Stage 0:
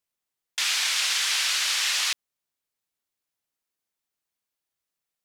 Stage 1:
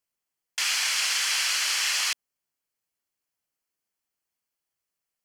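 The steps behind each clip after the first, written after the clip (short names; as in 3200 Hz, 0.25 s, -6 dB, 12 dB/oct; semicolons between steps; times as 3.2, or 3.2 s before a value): notch 3700 Hz, Q 6.2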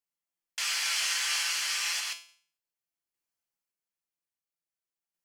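resonator 170 Hz, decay 0.45 s, harmonics all, mix 80%; random-step tremolo; gain +6.5 dB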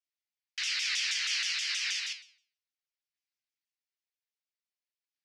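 Chebyshev band-pass 2000–5300 Hz, order 2; shaped vibrato saw down 6.3 Hz, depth 250 cents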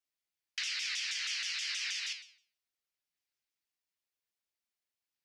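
compressor, threshold -35 dBFS, peak gain reduction 7.5 dB; gain +1.5 dB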